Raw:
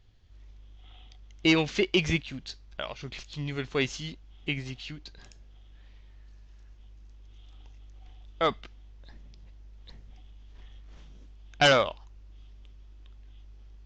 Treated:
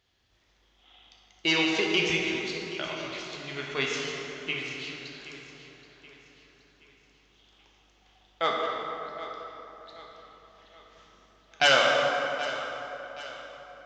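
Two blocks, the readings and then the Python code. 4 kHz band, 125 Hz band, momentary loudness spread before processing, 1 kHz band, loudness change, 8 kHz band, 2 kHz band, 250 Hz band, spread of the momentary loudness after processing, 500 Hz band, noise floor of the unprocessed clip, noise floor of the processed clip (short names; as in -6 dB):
+3.5 dB, -8.5 dB, 19 LU, +3.0 dB, +0.5 dB, +3.5 dB, +4.0 dB, -3.0 dB, 20 LU, +0.5 dB, -52 dBFS, -66 dBFS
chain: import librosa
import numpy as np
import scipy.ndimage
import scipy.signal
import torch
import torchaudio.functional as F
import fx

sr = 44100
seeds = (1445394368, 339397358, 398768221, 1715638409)

p1 = fx.highpass(x, sr, hz=660.0, slope=6)
p2 = p1 + fx.echo_feedback(p1, sr, ms=775, feedback_pct=45, wet_db=-15.0, dry=0)
y = fx.rev_plate(p2, sr, seeds[0], rt60_s=3.6, hf_ratio=0.5, predelay_ms=0, drr_db=-2.5)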